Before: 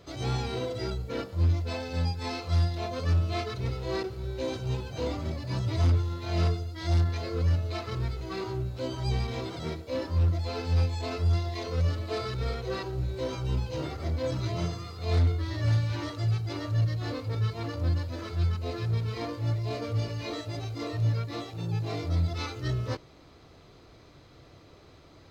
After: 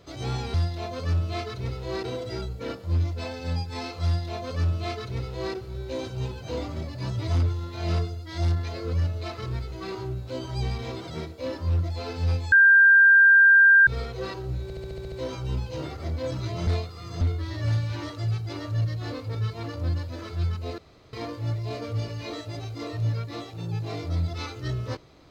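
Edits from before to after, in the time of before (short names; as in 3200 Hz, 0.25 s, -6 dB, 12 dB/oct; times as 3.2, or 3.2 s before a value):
2.54–4.05 copy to 0.54
11.01–12.36 bleep 1590 Hz -11.5 dBFS
13.12 stutter 0.07 s, 8 plays
14.67–15.21 reverse
18.78–19.13 room tone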